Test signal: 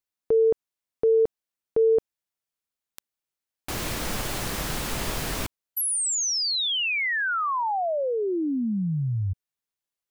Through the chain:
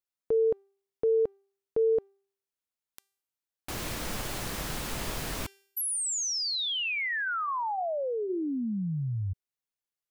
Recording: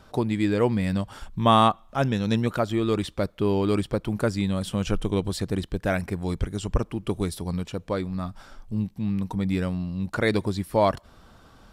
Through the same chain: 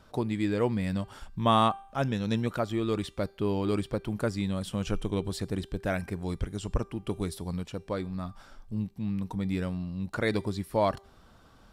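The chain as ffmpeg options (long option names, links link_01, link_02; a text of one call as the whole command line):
ffmpeg -i in.wav -af "bandreject=frequency=393.7:width_type=h:width=4,bandreject=frequency=787.4:width_type=h:width=4,bandreject=frequency=1181.1:width_type=h:width=4,bandreject=frequency=1574.8:width_type=h:width=4,bandreject=frequency=1968.5:width_type=h:width=4,bandreject=frequency=2362.2:width_type=h:width=4,bandreject=frequency=2755.9:width_type=h:width=4,bandreject=frequency=3149.6:width_type=h:width=4,bandreject=frequency=3543.3:width_type=h:width=4,bandreject=frequency=3937:width_type=h:width=4,bandreject=frequency=4330.7:width_type=h:width=4,bandreject=frequency=4724.4:width_type=h:width=4,bandreject=frequency=5118.1:width_type=h:width=4,bandreject=frequency=5511.8:width_type=h:width=4,bandreject=frequency=5905.5:width_type=h:width=4,bandreject=frequency=6299.2:width_type=h:width=4,bandreject=frequency=6692.9:width_type=h:width=4,bandreject=frequency=7086.6:width_type=h:width=4,bandreject=frequency=7480.3:width_type=h:width=4,bandreject=frequency=7874:width_type=h:width=4,bandreject=frequency=8267.7:width_type=h:width=4,bandreject=frequency=8661.4:width_type=h:width=4,bandreject=frequency=9055.1:width_type=h:width=4,bandreject=frequency=9448.8:width_type=h:width=4,bandreject=frequency=9842.5:width_type=h:width=4,bandreject=frequency=10236.2:width_type=h:width=4,bandreject=frequency=10629.9:width_type=h:width=4,bandreject=frequency=11023.6:width_type=h:width=4,bandreject=frequency=11417.3:width_type=h:width=4,bandreject=frequency=11811:width_type=h:width=4,bandreject=frequency=12204.7:width_type=h:width=4,bandreject=frequency=12598.4:width_type=h:width=4,bandreject=frequency=12992.1:width_type=h:width=4,bandreject=frequency=13385.8:width_type=h:width=4,bandreject=frequency=13779.5:width_type=h:width=4,bandreject=frequency=14173.2:width_type=h:width=4,bandreject=frequency=14566.9:width_type=h:width=4,bandreject=frequency=14960.6:width_type=h:width=4,bandreject=frequency=15354.3:width_type=h:width=4,volume=-5dB" out.wav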